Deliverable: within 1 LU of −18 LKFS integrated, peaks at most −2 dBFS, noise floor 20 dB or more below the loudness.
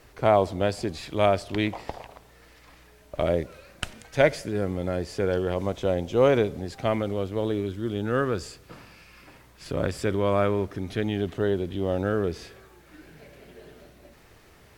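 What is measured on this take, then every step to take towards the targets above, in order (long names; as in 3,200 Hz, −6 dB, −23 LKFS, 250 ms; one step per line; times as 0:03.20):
integrated loudness −26.5 LKFS; sample peak −6.0 dBFS; target loudness −18.0 LKFS
→ level +8.5 dB
brickwall limiter −2 dBFS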